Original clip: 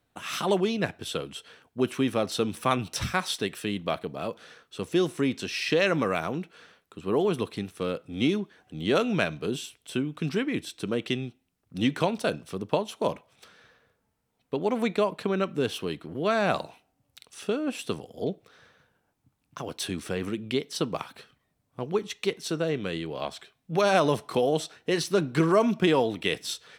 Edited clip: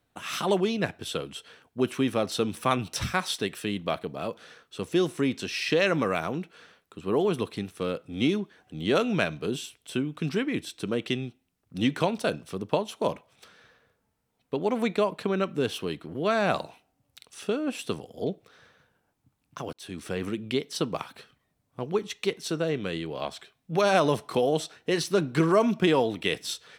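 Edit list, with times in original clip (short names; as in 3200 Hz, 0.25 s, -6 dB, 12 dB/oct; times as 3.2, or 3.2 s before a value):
19.73–20.3 fade in equal-power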